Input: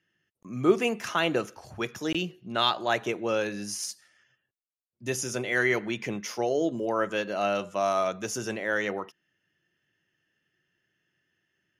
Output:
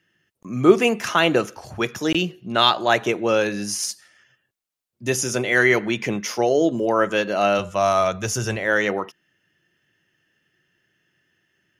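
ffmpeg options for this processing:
-filter_complex "[0:a]asplit=3[a][b][c];[a]afade=t=out:st=7.58:d=0.02[d];[b]asubboost=boost=8.5:cutoff=86,afade=t=in:st=7.58:d=0.02,afade=t=out:st=8.66:d=0.02[e];[c]afade=t=in:st=8.66:d=0.02[f];[d][e][f]amix=inputs=3:normalize=0,volume=8dB"

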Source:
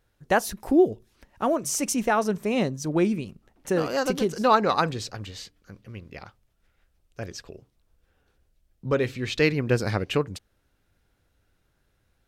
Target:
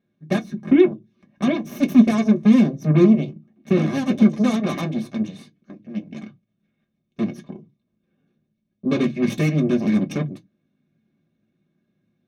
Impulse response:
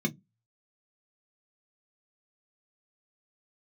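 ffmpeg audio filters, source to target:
-filter_complex "[0:a]lowpass=4.7k,alimiter=limit=-17.5dB:level=0:latency=1:release=354,aeval=exprs='0.133*(cos(1*acos(clip(val(0)/0.133,-1,1)))-cos(1*PI/2))+0.0299*(cos(7*acos(clip(val(0)/0.133,-1,1)))-cos(7*PI/2))+0.0299*(cos(8*acos(clip(val(0)/0.133,-1,1)))-cos(8*PI/2))':c=same[a];[1:a]atrim=start_sample=2205,afade=t=out:st=0.19:d=0.01,atrim=end_sample=8820[b];[a][b]afir=irnorm=-1:irlink=0,volume=-5.5dB"

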